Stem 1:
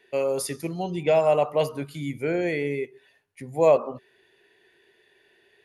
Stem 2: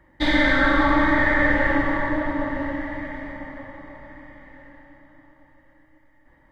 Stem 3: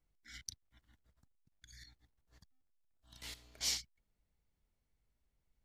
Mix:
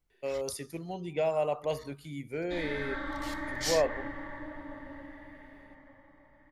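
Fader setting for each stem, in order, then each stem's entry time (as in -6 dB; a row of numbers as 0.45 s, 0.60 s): -9.0 dB, -18.5 dB, +2.0 dB; 0.10 s, 2.30 s, 0.00 s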